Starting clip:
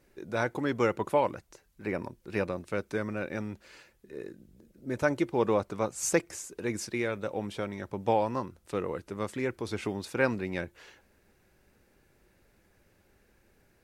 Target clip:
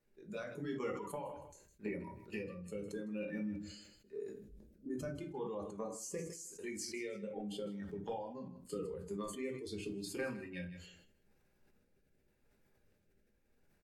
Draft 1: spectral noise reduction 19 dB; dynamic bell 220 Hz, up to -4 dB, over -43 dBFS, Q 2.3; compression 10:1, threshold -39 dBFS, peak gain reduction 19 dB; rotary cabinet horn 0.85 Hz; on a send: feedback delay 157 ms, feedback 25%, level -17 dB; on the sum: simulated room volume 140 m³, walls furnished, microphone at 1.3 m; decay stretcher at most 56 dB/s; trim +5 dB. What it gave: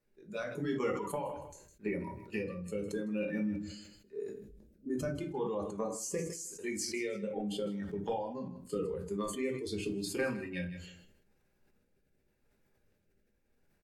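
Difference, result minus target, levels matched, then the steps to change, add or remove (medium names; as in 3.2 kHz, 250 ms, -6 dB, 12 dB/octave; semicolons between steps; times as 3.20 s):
compression: peak gain reduction -6.5 dB
change: compression 10:1, threshold -46 dBFS, peak gain reduction 25.5 dB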